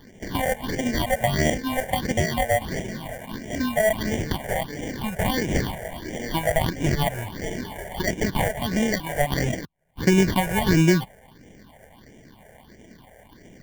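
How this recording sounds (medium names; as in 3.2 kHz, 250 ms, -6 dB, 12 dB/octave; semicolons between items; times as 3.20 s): aliases and images of a low sample rate 1.3 kHz, jitter 0%; phasing stages 6, 1.5 Hz, lowest notch 280–1200 Hz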